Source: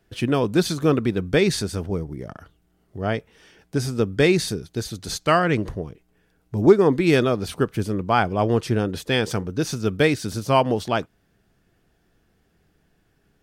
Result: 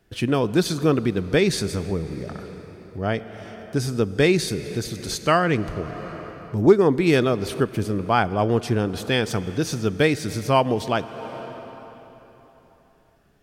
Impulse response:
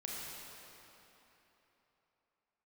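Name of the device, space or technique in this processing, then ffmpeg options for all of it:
ducked reverb: -filter_complex "[0:a]asplit=3[link_01][link_02][link_03];[1:a]atrim=start_sample=2205[link_04];[link_02][link_04]afir=irnorm=-1:irlink=0[link_05];[link_03]apad=whole_len=592114[link_06];[link_05][link_06]sidechaincompress=threshold=-32dB:ratio=3:attack=16:release=328,volume=-4.5dB[link_07];[link_01][link_07]amix=inputs=2:normalize=0,volume=-1dB"

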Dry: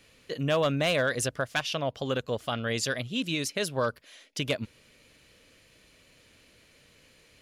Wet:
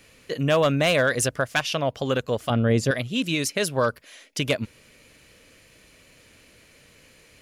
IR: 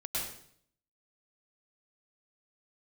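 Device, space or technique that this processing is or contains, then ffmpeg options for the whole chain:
exciter from parts: -filter_complex "[0:a]asettb=1/sr,asplit=3[link_01][link_02][link_03];[link_01]atrim=end=2.504[link_04];[link_02]atrim=start=2.5:end=2.91,asetpts=PTS-STARTPTS,afade=type=in:duration=0.004:curve=qsin,afade=type=out:start_time=0.406:duration=0.004:curve=qsin,tiltshelf=frequency=850:gain=8.5[link_05];[link_03]atrim=start=2.906[link_06];[link_04][link_05]acrossfade=duration=0.004:curve1=hsin:curve2=qsin[link_07];[link_07][link_06]acrossfade=duration=0.004:curve1=qsin:curve2=hsin,asplit=2[link_08][link_09];[link_09]highpass=2400,asoftclip=type=tanh:threshold=-26dB,highpass=frequency=2500:width=0.5412,highpass=frequency=2500:width=1.3066,volume=-10dB[link_10];[link_08][link_10]amix=inputs=2:normalize=0,volume=5.5dB"

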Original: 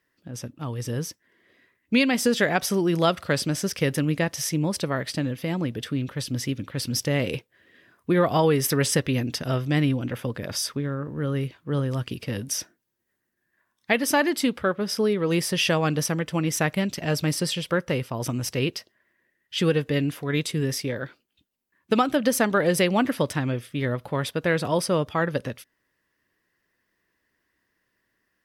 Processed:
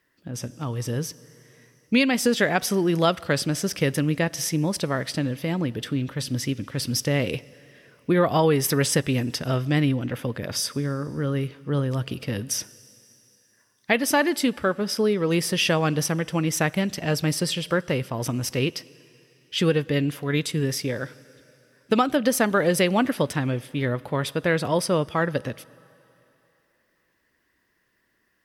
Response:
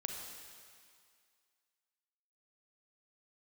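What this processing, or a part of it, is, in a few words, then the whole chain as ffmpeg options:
ducked reverb: -filter_complex "[0:a]asplit=3[link_01][link_02][link_03];[1:a]atrim=start_sample=2205[link_04];[link_02][link_04]afir=irnorm=-1:irlink=0[link_05];[link_03]apad=whole_len=1254297[link_06];[link_05][link_06]sidechaincompress=threshold=-35dB:ratio=8:attack=40:release=1450,volume=-3dB[link_07];[link_01][link_07]amix=inputs=2:normalize=0"

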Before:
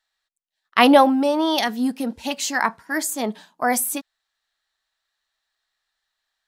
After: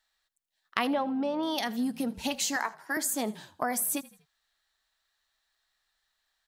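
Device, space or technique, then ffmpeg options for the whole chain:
ASMR close-microphone chain: -filter_complex "[0:a]lowshelf=frequency=130:gain=6,acompressor=threshold=-28dB:ratio=5,highshelf=frequency=9100:gain=4.5,asettb=1/sr,asplit=3[link_01][link_02][link_03];[link_01]atrim=end=0.934[link_04];[link_02]atrim=start=0.93:end=1.43,asetpts=PTS-STARTPTS,afade=type=in:duration=0.004:curve=qsin,afade=type=out:start_time=0.496:duration=0.004:curve=qsin,lowpass=3600[link_05];[link_03]atrim=start=1.426[link_06];[link_04][link_05]acrossfade=duration=0.004:curve1=hsin:curve2=qsin[link_07];[link_07][link_06]acrossfade=duration=0.004:curve1=qsin:curve2=hsin,asettb=1/sr,asplit=3[link_08][link_09][link_10];[link_08]atrim=end=2.564[link_11];[link_09]atrim=start=2.56:end=2.97,asetpts=PTS-STARTPTS,afade=type=in:duration=0.004:curve=qsin,afade=type=out:start_time=0.406:duration=0.004:curve=qsin,highpass=frequency=310:width=0.5412,highpass=frequency=310:width=1.3066[link_12];[link_10]atrim=start=2.966[link_13];[link_11][link_12]acrossfade=duration=0.004:curve1=hsin:curve2=qsin[link_14];[link_14][link_13]acrossfade=duration=0.004:curve1=qsin:curve2=hsin,asplit=4[link_15][link_16][link_17][link_18];[link_16]adelay=81,afreqshift=-40,volume=-20.5dB[link_19];[link_17]adelay=162,afreqshift=-80,volume=-27.2dB[link_20];[link_18]adelay=243,afreqshift=-120,volume=-34dB[link_21];[link_15][link_19][link_20][link_21]amix=inputs=4:normalize=0"

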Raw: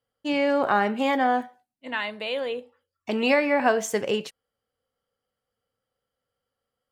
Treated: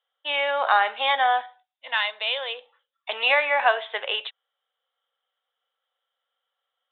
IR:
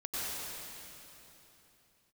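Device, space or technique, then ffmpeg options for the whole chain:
musical greeting card: -af "aresample=8000,aresample=44100,highpass=frequency=690:width=0.5412,highpass=frequency=690:width=1.3066,equalizer=frequency=3600:width_type=o:width=0.35:gain=12,volume=4dB"

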